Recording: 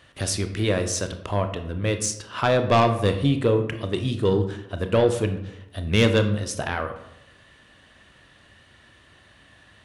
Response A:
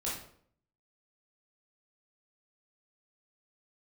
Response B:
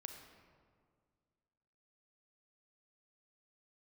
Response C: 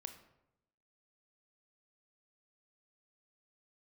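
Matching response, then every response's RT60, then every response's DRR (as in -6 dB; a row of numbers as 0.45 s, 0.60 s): C; 0.60 s, 2.0 s, 0.85 s; -7.0 dB, 4.0 dB, 7.0 dB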